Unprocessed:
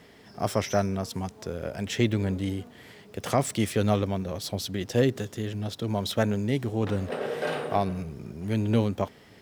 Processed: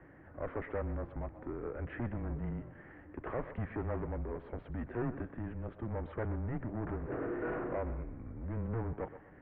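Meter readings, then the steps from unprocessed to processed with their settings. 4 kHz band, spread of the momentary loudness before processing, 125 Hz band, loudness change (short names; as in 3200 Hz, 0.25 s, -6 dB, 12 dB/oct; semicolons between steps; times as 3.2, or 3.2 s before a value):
under -30 dB, 10 LU, -10.0 dB, -11.0 dB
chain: soft clip -27 dBFS, distortion -7 dB; air absorption 200 m; thinning echo 0.125 s, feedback 36%, level -13 dB; in parallel at -7 dB: hard clip -36 dBFS, distortion -9 dB; on the sum: mistuned SSB -120 Hz 160–2100 Hz; gain -5 dB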